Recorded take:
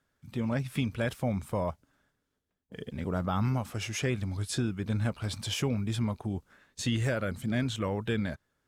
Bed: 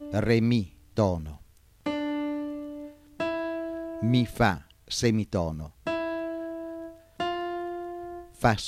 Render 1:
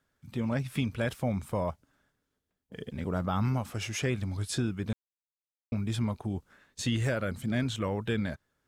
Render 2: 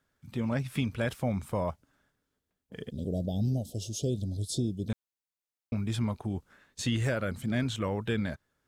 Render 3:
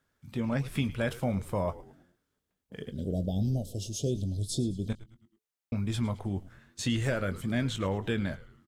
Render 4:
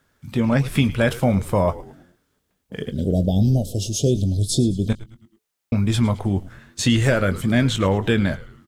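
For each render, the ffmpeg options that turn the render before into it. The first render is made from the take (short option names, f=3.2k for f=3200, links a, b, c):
-filter_complex "[0:a]asplit=3[a][b][c];[a]atrim=end=4.93,asetpts=PTS-STARTPTS,afade=t=out:st=4.926:d=0.004:c=hsin[d];[b]atrim=start=4.93:end=5.72,asetpts=PTS-STARTPTS,volume=0[e];[c]atrim=start=5.72,asetpts=PTS-STARTPTS,afade=t=in:d=0.004:c=hsin[f];[d][e][f]concat=n=3:v=0:a=1"
-filter_complex "[0:a]asplit=3[a][b][c];[a]afade=t=out:st=2.9:d=0.02[d];[b]asuperstop=centerf=1500:order=12:qfactor=0.56,afade=t=in:st=2.9:d=0.02,afade=t=out:st=4.88:d=0.02[e];[c]afade=t=in:st=4.88:d=0.02[f];[d][e][f]amix=inputs=3:normalize=0"
-filter_complex "[0:a]asplit=2[a][b];[b]adelay=21,volume=-12.5dB[c];[a][c]amix=inputs=2:normalize=0,asplit=5[d][e][f][g][h];[e]adelay=108,afreqshift=-110,volume=-17dB[i];[f]adelay=216,afreqshift=-220,volume=-24.3dB[j];[g]adelay=324,afreqshift=-330,volume=-31.7dB[k];[h]adelay=432,afreqshift=-440,volume=-39dB[l];[d][i][j][k][l]amix=inputs=5:normalize=0"
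-af "volume=11.5dB"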